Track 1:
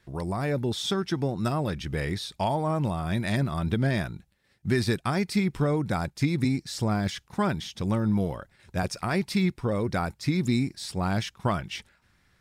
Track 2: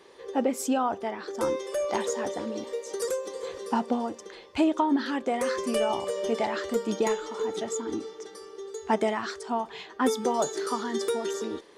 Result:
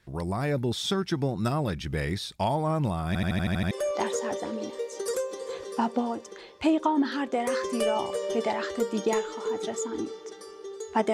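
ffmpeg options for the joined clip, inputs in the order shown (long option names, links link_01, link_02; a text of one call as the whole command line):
ffmpeg -i cue0.wav -i cue1.wav -filter_complex "[0:a]apad=whole_dur=11.13,atrim=end=11.13,asplit=8[link_01][link_02][link_03][link_04][link_05][link_06][link_07][link_08];[link_01]atrim=end=3.152[link_09];[link_02]atrim=start=3.068:end=3.152[link_10];[link_03]atrim=start=3.068:end=3.152[link_11];[link_04]atrim=start=3.068:end=3.152[link_12];[link_05]atrim=start=3.068:end=3.152[link_13];[link_06]atrim=start=3.068:end=3.152[link_14];[link_07]atrim=start=3.068:end=3.152[link_15];[link_08]atrim=start=3.068:end=3.152[link_16];[1:a]atrim=start=1.648:end=9.07[link_17];[link_09][link_10]acrossfade=duration=0.004:curve1=hsin:curve2=hsin[link_18];[link_18][link_11]acrossfade=duration=0.004:curve1=hsin:curve2=hsin[link_19];[link_19][link_12]acrossfade=duration=0.004:curve1=hsin:curve2=hsin[link_20];[link_20][link_13]acrossfade=duration=0.004:curve1=hsin:curve2=hsin[link_21];[link_21][link_14]acrossfade=duration=0.004:curve1=hsin:curve2=hsin[link_22];[link_22][link_15]acrossfade=duration=0.004:curve1=hsin:curve2=hsin[link_23];[link_23][link_16]acrossfade=duration=0.004:curve1=hsin:curve2=hsin[link_24];[link_24][link_17]acrossfade=duration=0.004:curve1=hsin:curve2=hsin" out.wav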